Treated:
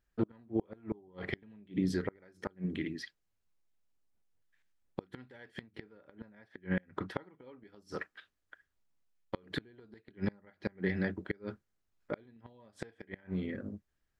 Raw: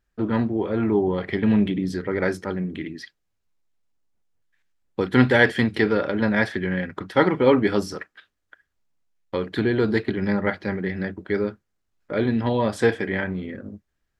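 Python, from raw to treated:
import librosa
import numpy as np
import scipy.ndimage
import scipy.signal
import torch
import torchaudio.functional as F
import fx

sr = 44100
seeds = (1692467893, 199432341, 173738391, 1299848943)

y = fx.gate_flip(x, sr, shuts_db=-14.0, range_db=-32)
y = fx.high_shelf(y, sr, hz=3400.0, db=-8.0, at=(5.61, 7.33))
y = y * 10.0 ** (-5.0 / 20.0)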